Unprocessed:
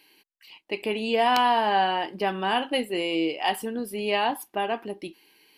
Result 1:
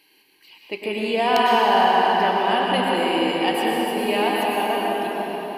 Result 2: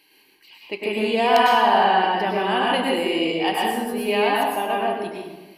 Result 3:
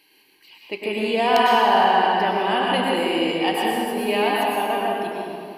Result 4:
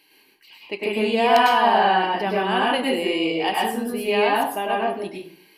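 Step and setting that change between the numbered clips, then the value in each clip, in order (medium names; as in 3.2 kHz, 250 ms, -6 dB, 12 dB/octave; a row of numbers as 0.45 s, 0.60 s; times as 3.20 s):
plate-style reverb, RT60: 5.3 s, 1.2 s, 2.6 s, 0.54 s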